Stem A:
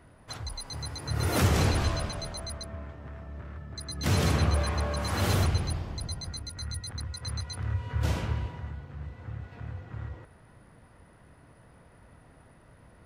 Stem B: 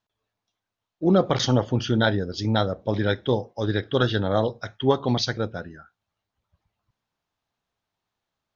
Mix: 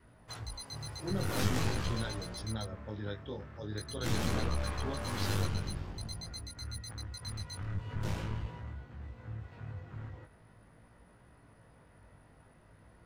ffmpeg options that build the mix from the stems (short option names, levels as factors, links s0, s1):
-filter_complex "[0:a]aeval=exprs='clip(val(0),-1,0.0178)':c=same,volume=0.841[s0];[1:a]acrossover=split=180|3000[s1][s2][s3];[s2]acompressor=threshold=0.0501:ratio=1.5[s4];[s1][s4][s3]amix=inputs=3:normalize=0,volume=0.2[s5];[s0][s5]amix=inputs=2:normalize=0,adynamicequalizer=threshold=0.00178:dfrequency=680:dqfactor=4.6:tfrequency=680:tqfactor=4.6:attack=5:release=100:ratio=0.375:range=3:mode=cutabove:tftype=bell,flanger=delay=17:depth=3.1:speed=0.45"